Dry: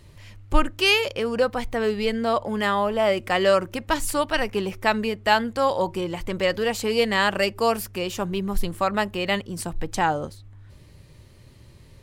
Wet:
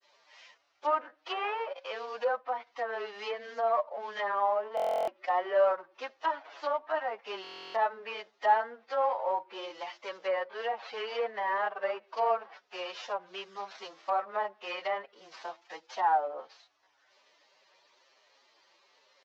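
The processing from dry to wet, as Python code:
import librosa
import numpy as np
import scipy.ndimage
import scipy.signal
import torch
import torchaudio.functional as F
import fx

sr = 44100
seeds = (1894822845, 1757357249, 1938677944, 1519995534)

y = fx.cvsd(x, sr, bps=32000)
y = fx.ladder_highpass(y, sr, hz=550.0, resonance_pct=30)
y = fx.stretch_vocoder(y, sr, factor=1.6)
y = fx.granulator(y, sr, seeds[0], grain_ms=97.0, per_s=27.0, spray_ms=13.0, spread_st=0)
y = fx.env_lowpass_down(y, sr, base_hz=1400.0, full_db=-32.5)
y = fx.buffer_glitch(y, sr, at_s=(4.75, 7.42), block=1024, repeats=13)
y = y * 10.0 ** (3.5 / 20.0)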